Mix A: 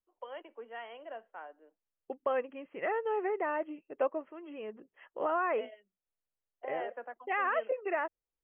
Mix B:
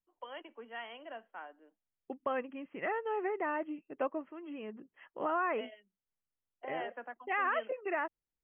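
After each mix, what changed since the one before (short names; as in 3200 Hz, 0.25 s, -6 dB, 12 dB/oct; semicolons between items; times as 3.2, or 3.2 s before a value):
first voice: remove air absorption 250 m; master: add graphic EQ 125/250/500 Hz +4/+5/-6 dB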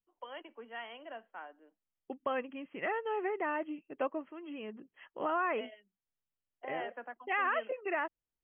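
second voice: remove LPF 2500 Hz 12 dB/oct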